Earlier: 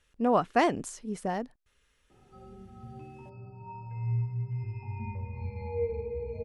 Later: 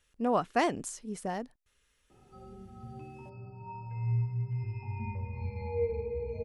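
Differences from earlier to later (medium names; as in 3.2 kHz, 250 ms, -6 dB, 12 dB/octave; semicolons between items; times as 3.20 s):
speech -3.5 dB; master: add treble shelf 4.7 kHz +6.5 dB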